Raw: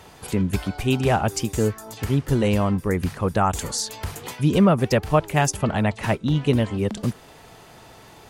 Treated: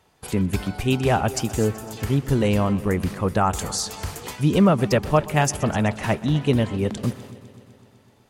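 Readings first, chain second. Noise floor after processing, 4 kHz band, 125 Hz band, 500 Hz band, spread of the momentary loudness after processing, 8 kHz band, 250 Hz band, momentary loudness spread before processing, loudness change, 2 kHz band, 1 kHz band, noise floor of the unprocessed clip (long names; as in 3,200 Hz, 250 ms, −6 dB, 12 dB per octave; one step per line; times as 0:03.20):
−57 dBFS, 0.0 dB, 0.0 dB, 0.0 dB, 10 LU, 0.0 dB, 0.0 dB, 9 LU, 0.0 dB, 0.0 dB, 0.0 dB, −47 dBFS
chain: noise gate −42 dBFS, range −15 dB
echo machine with several playback heads 126 ms, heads first and second, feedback 62%, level −20.5 dB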